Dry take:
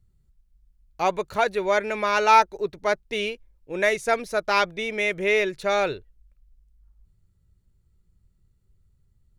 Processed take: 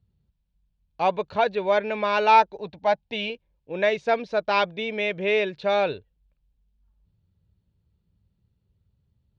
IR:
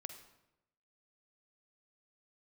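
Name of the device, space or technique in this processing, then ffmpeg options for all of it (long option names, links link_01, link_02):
guitar cabinet: -filter_complex "[0:a]highpass=85,equalizer=frequency=130:width_type=q:width=4:gain=-3,equalizer=frequency=360:width_type=q:width=4:gain=-6,equalizer=frequency=1300:width_type=q:width=4:gain=-8,equalizer=frequency=2000:width_type=q:width=4:gain=-8,lowpass=frequency=4000:width=0.5412,lowpass=frequency=4000:width=1.3066,asettb=1/sr,asplit=3[link_01][link_02][link_03];[link_01]atrim=end=2.604[link_04];[link_02]atrim=start=2.6:end=3.3,asetpts=PTS-STARTPTS,afade=type=in:duration=0.004:curve=qsin,afade=type=out:start_time=0.696:duration=0.004:curve=qsin,equalizer=frequency=400:width_type=o:width=0.33:gain=-10,equalizer=frequency=800:width_type=o:width=0.33:gain=8,equalizer=frequency=1250:width_type=o:width=0.33:gain=-6[link_05];[link_03]atrim=start=3.296[link_06];[link_04][link_05]acrossfade=duration=0.004:curve1=hsin:curve2=qsin[link_07];[link_07][link_06]acrossfade=duration=0.004:curve1=qsin:curve2=hsin,volume=2dB"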